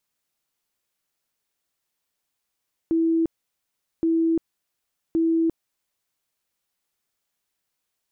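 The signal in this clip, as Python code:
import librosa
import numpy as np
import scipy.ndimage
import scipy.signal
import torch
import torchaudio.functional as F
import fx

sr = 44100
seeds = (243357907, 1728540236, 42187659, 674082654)

y = fx.tone_burst(sr, hz=328.0, cycles=114, every_s=1.12, bursts=3, level_db=-17.5)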